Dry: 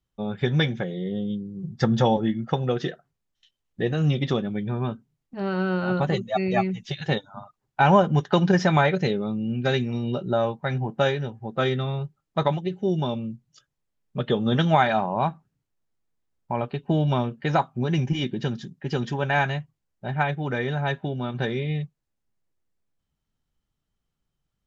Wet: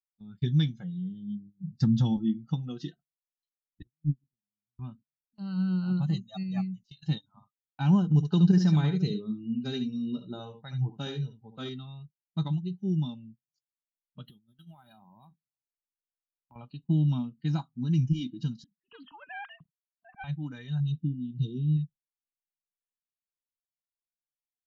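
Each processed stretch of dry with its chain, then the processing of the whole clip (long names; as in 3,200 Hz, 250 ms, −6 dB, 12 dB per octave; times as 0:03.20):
0:03.82–0:04.79: Butterworth low-pass 780 Hz + low-shelf EQ 87 Hz +9 dB + noise gate −17 dBFS, range −36 dB
0:06.43–0:07.03: high-shelf EQ 5,800 Hz −4 dB + expander for the loud parts, over −30 dBFS
0:08.04–0:11.69: parametric band 450 Hz +10.5 dB 0.24 octaves + single-tap delay 71 ms −8 dB
0:14.25–0:16.56: downward compressor 12 to 1, threshold −32 dBFS + linearly interpolated sample-rate reduction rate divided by 3×
0:18.64–0:20.24: three sine waves on the formant tracks + parametric band 300 Hz −14.5 dB 0.67 octaves + highs frequency-modulated by the lows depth 0.29 ms
0:20.80–0:21.77: linear-phase brick-wall band-stop 500–2,600 Hz + tilt shelving filter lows +3.5 dB, about 670 Hz
whole clip: noise reduction from a noise print of the clip's start 15 dB; noise gate −46 dBFS, range −21 dB; drawn EQ curve 200 Hz 0 dB, 300 Hz −4 dB, 530 Hz −28 dB, 820 Hz −19 dB, 2,200 Hz −19 dB, 4,100 Hz −5 dB, 6,500 Hz −9 dB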